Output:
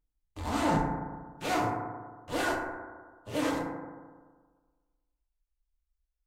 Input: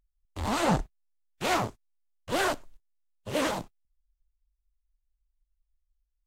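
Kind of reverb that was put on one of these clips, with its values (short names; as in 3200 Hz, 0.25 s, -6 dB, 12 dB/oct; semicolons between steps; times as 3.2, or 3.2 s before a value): FDN reverb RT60 1.5 s, low-frequency decay 1×, high-frequency decay 0.25×, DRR -2.5 dB; gain -7 dB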